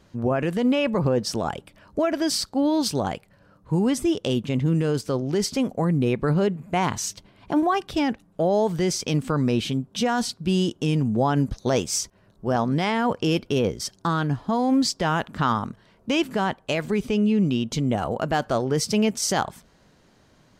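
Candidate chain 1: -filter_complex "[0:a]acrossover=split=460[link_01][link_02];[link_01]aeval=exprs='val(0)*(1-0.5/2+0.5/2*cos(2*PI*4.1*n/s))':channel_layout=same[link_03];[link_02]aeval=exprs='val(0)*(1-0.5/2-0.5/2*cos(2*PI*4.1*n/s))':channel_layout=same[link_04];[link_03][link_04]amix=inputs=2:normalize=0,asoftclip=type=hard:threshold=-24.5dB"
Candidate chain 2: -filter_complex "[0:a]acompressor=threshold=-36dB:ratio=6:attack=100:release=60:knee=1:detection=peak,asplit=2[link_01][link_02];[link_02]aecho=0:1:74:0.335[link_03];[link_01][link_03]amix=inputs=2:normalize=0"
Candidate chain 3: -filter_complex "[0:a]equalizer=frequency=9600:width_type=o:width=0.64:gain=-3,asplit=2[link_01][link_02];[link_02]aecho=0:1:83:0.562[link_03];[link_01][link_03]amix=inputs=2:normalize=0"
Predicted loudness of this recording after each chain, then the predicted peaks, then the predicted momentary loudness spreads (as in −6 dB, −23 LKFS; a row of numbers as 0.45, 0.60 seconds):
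−29.5, −31.5, −23.0 LKFS; −24.5, −12.0, −7.5 dBFS; 5, 4, 6 LU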